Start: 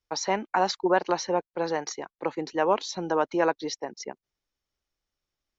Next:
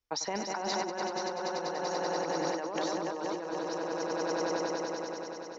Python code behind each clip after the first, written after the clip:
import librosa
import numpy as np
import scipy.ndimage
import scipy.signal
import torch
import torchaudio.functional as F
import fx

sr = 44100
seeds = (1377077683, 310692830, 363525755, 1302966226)

y = fx.echo_swell(x, sr, ms=96, loudest=5, wet_db=-7.0)
y = fx.over_compress(y, sr, threshold_db=-27.0, ratio=-1.0)
y = y * librosa.db_to_amplitude(-6.5)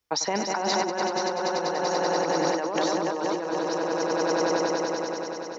y = scipy.signal.sosfilt(scipy.signal.butter(2, 75.0, 'highpass', fs=sr, output='sos'), x)
y = y * librosa.db_to_amplitude(7.5)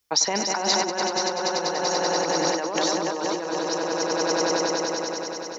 y = fx.high_shelf(x, sr, hz=3200.0, db=10.0)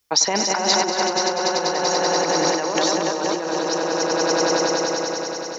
y = x + 10.0 ** (-11.0 / 20.0) * np.pad(x, (int(229 * sr / 1000.0), 0))[:len(x)]
y = y * librosa.db_to_amplitude(3.5)